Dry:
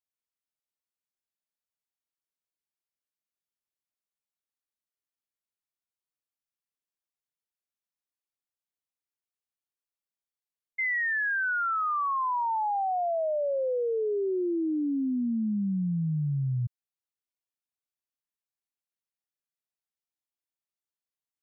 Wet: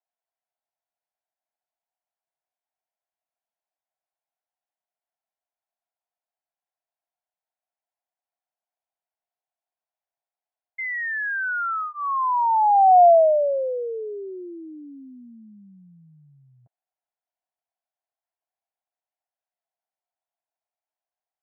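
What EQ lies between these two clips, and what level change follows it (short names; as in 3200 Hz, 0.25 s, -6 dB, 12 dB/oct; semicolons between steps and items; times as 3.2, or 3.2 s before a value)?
resonant high-pass 700 Hz, resonance Q 5.7; LPF 2000 Hz; notch 1200 Hz, Q 8.6; +1.5 dB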